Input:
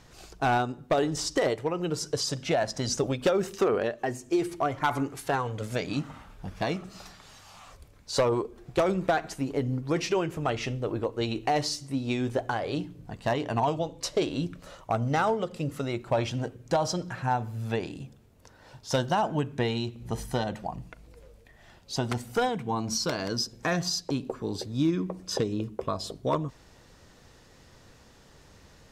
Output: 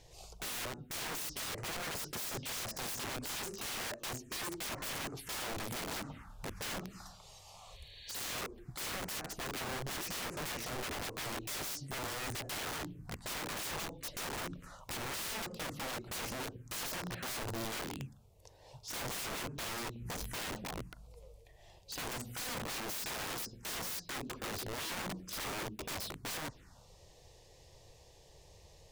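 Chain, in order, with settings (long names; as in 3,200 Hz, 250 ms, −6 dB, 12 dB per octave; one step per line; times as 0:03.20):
phaser swept by the level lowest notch 200 Hz, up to 3,400 Hz, full sweep at −27 dBFS
wrap-around overflow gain 33 dB
healed spectral selection 0:07.60–0:08.07, 1,600–4,500 Hz both
level −2 dB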